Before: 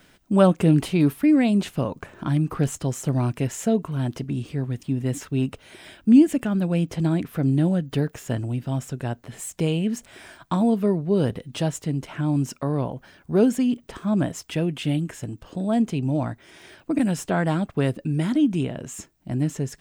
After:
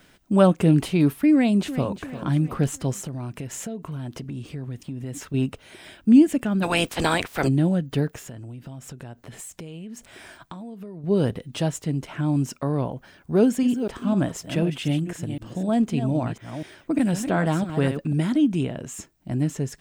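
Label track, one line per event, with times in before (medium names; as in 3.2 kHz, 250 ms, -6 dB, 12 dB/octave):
1.330000	1.910000	echo throw 350 ms, feedback 50%, level -12.5 dB
2.980000	5.340000	compression, threshold -29 dBFS
6.620000	7.470000	spectral peaks clipped ceiling under each frame's peak by 28 dB
8.160000	11.040000	compression 16:1, threshold -34 dBFS
13.380000	18.220000	chunks repeated in reverse 250 ms, level -9 dB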